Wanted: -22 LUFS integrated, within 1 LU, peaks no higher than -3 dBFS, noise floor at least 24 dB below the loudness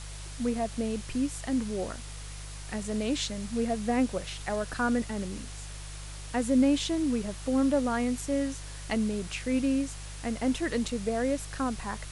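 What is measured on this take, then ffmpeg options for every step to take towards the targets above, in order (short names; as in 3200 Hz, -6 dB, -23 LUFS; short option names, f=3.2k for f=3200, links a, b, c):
hum 50 Hz; harmonics up to 150 Hz; hum level -39 dBFS; noise floor -41 dBFS; noise floor target -54 dBFS; loudness -30.0 LUFS; peak -14.0 dBFS; loudness target -22.0 LUFS
-> -af "bandreject=f=50:t=h:w=4,bandreject=f=100:t=h:w=4,bandreject=f=150:t=h:w=4"
-af "afftdn=nr=13:nf=-41"
-af "volume=8dB"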